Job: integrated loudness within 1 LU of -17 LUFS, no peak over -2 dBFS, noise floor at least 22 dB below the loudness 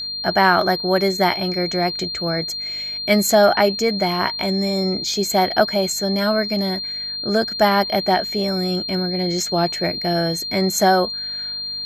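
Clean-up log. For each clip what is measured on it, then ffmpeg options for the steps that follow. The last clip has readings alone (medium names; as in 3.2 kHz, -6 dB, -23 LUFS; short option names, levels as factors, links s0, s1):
hum 50 Hz; highest harmonic 250 Hz; hum level -52 dBFS; steady tone 4.2 kHz; tone level -25 dBFS; loudness -19.0 LUFS; peak level -2.5 dBFS; loudness target -17.0 LUFS
-> -af "bandreject=f=50:t=h:w=4,bandreject=f=100:t=h:w=4,bandreject=f=150:t=h:w=4,bandreject=f=200:t=h:w=4,bandreject=f=250:t=h:w=4"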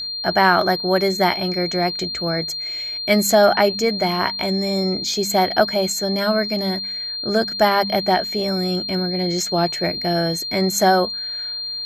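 hum not found; steady tone 4.2 kHz; tone level -25 dBFS
-> -af "bandreject=f=4200:w=30"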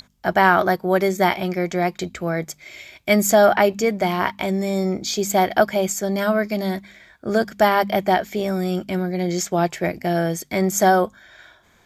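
steady tone not found; loudness -20.5 LUFS; peak level -2.5 dBFS; loudness target -17.0 LUFS
-> -af "volume=1.5,alimiter=limit=0.794:level=0:latency=1"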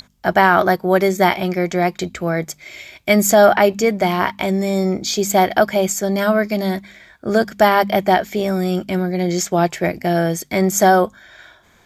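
loudness -17.0 LUFS; peak level -2.0 dBFS; noise floor -53 dBFS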